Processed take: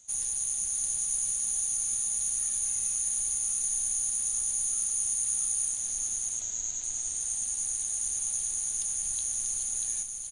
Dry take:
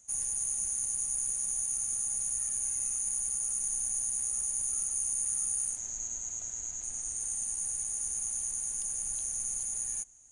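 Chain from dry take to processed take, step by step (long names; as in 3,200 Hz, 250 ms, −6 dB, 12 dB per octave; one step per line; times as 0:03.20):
parametric band 3,800 Hz +13 dB 0.88 octaves
single-tap delay 640 ms −5.5 dB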